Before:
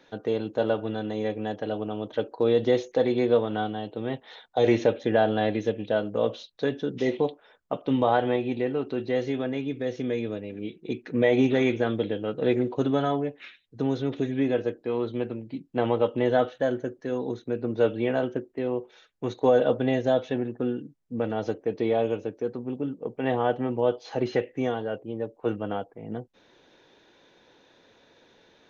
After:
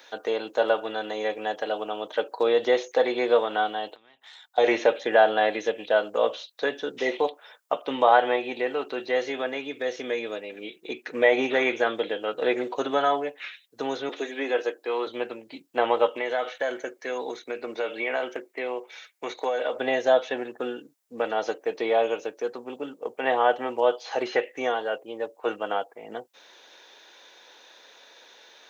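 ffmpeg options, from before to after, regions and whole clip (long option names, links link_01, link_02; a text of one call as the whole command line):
ffmpeg -i in.wav -filter_complex "[0:a]asettb=1/sr,asplit=3[link_01][link_02][link_03];[link_01]atrim=end=3.954[link_04];[link_02]atrim=start=3.95:end=4.58,asetpts=PTS-STARTPTS,afade=type=in:duration=0.004:curve=qsin,afade=type=out:start_time=0.626:duration=0.004:curve=qsin,equalizer=frequency=500:width=1.4:gain=-12,acompressor=threshold=-48dB:ratio=16:attack=3.2:release=140:knee=1:detection=peak,aeval=exprs='(tanh(56.2*val(0)+0.8)-tanh(0.8))/56.2':channel_layout=same[link_05];[link_03]atrim=start=4.576[link_06];[link_04][link_05]acrossfade=duration=0.004:curve1=hsin:curve2=qsin[link_07];[link_07][link_06]acrossfade=duration=0.004:curve1=qsin:curve2=hsin,asettb=1/sr,asplit=3[link_08][link_09][link_10];[link_08]atrim=end=14.094[link_11];[link_09]atrim=start=14.09:end=15.07,asetpts=PTS-STARTPTS,afade=type=in:duration=0.004:curve=qsin,afade=type=out:start_time=0.976:duration=0.004:curve=qsin,highpass=frequency=260:width=0.5412,highpass=frequency=260:width=1.3066,bandreject=frequency=620:width=16[link_12];[link_10]atrim=start=15.066[link_13];[link_11][link_12]acrossfade=duration=0.004:curve1=hsin:curve2=qsin[link_14];[link_14][link_13]acrossfade=duration=0.004:curve1=qsin:curve2=hsin,asettb=1/sr,asplit=3[link_15][link_16][link_17];[link_15]atrim=end=16.114[link_18];[link_16]atrim=start=16.11:end=19.79,asetpts=PTS-STARTPTS,afade=type=in:duration=0.004:curve=qsin,afade=type=out:start_time=3.676:duration=0.004:curve=qsin,highpass=frequency=160:poles=1,equalizer=frequency=2200:width_type=o:width=0.28:gain=11.5,acompressor=threshold=-25dB:ratio=6:attack=3.2:release=140:knee=1:detection=peak[link_19];[link_17]atrim=start=19.786[link_20];[link_18][link_19]acrossfade=duration=0.004:curve1=hsin:curve2=qsin[link_21];[link_21][link_20]acrossfade=duration=0.004:curve1=qsin:curve2=hsin,highpass=660,acrossover=split=2800[link_22][link_23];[link_23]acompressor=threshold=-55dB:ratio=4:attack=1:release=60[link_24];[link_22][link_24]amix=inputs=2:normalize=0,highshelf=frequency=5900:gain=12,volume=7.5dB" out.wav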